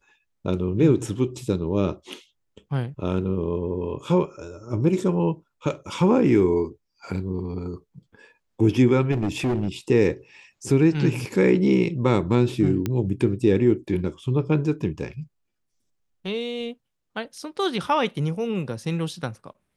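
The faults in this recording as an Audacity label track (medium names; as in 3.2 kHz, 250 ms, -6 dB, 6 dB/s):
9.110000	9.680000	clipped -19.5 dBFS
12.860000	12.860000	pop -12 dBFS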